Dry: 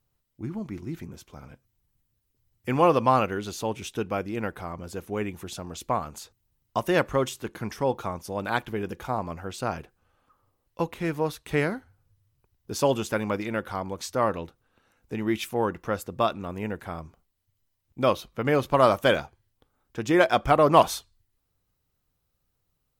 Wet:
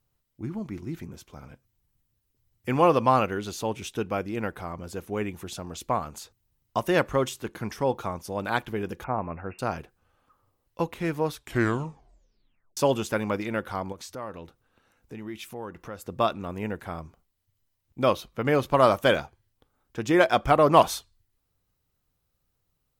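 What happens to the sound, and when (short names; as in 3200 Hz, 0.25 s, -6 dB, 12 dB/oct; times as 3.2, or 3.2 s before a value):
9.04–9.59 brick-wall FIR low-pass 2800 Hz
11.31 tape stop 1.46 s
13.92–16.06 compressor 2:1, threshold -42 dBFS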